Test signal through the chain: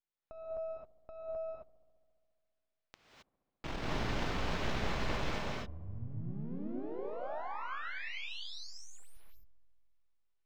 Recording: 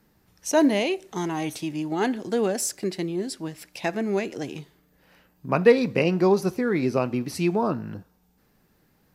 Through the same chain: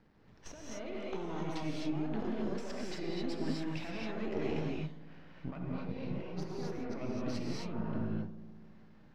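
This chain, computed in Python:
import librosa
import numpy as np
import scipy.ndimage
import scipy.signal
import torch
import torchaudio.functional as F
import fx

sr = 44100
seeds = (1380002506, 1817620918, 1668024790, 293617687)

p1 = np.where(x < 0.0, 10.0 ** (-12.0 / 20.0) * x, x)
p2 = fx.over_compress(p1, sr, threshold_db=-36.0, ratio=-1.0)
p3 = fx.air_absorb(p2, sr, metres=200.0)
p4 = p3 + fx.echo_wet_lowpass(p3, sr, ms=69, feedback_pct=81, hz=730.0, wet_db=-17.5, dry=0)
p5 = fx.rev_gated(p4, sr, seeds[0], gate_ms=290, shape='rising', drr_db=-3.5)
y = p5 * librosa.db_to_amplitude(-6.5)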